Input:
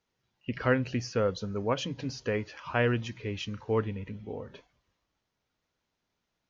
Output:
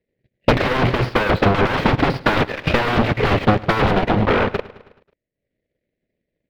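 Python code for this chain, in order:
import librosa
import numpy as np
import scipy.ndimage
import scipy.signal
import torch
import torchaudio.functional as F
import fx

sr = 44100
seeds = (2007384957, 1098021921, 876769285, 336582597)

p1 = scipy.signal.medfilt(x, 15)
p2 = scipy.signal.sosfilt(scipy.signal.cheby1(3, 1.0, [590.0, 1900.0], 'bandstop', fs=sr, output='sos'), p1)
p3 = fx.low_shelf(p2, sr, hz=290.0, db=-9.5)
p4 = fx.leveller(p3, sr, passes=5)
p5 = fx.level_steps(p4, sr, step_db=24)
p6 = p4 + (p5 * 10.0 ** (1.0 / 20.0))
p7 = fx.fold_sine(p6, sr, drive_db=18, ceiling_db=-12.0)
p8 = fx.air_absorb(p7, sr, metres=370.0)
p9 = p8 + fx.echo_feedback(p8, sr, ms=107, feedback_pct=52, wet_db=-12.5, dry=0)
y = fx.transient(p9, sr, attack_db=10, sustain_db=-7)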